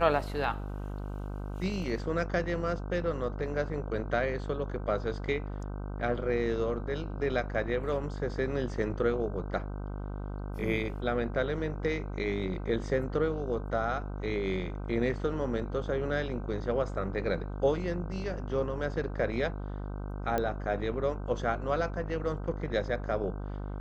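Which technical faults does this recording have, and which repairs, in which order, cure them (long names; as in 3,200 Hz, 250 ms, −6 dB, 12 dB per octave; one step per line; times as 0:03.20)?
mains buzz 50 Hz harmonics 31 −37 dBFS
0:20.38: click −17 dBFS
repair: click removal
hum removal 50 Hz, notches 31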